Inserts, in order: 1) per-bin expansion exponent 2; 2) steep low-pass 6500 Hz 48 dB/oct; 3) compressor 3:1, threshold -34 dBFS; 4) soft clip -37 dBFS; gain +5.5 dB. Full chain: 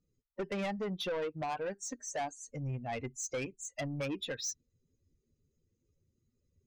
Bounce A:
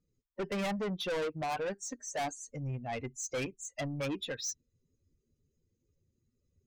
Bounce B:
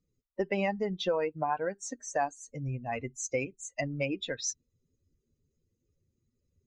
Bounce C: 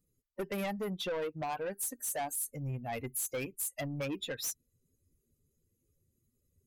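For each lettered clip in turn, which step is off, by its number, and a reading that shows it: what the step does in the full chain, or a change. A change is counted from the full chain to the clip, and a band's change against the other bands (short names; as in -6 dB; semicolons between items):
3, loudness change +1.5 LU; 4, distortion -9 dB; 2, 8 kHz band +3.5 dB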